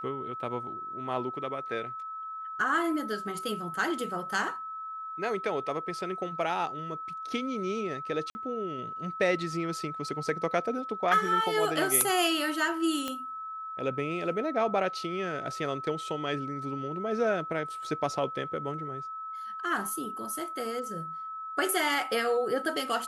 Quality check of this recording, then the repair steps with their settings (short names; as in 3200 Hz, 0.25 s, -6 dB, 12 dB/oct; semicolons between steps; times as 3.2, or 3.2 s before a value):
tone 1300 Hz -36 dBFS
8.3–8.35 gap 50 ms
13.08 pop -17 dBFS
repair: de-click; notch 1300 Hz, Q 30; interpolate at 8.3, 50 ms